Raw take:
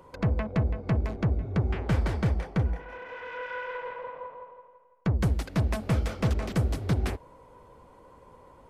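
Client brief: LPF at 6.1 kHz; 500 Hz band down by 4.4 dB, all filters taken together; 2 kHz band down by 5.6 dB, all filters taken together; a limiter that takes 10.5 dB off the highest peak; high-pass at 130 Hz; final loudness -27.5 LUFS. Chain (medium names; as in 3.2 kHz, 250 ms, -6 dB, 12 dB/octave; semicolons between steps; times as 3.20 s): high-pass 130 Hz; low-pass 6.1 kHz; peaking EQ 500 Hz -5 dB; peaking EQ 2 kHz -7.5 dB; trim +11.5 dB; peak limiter -15.5 dBFS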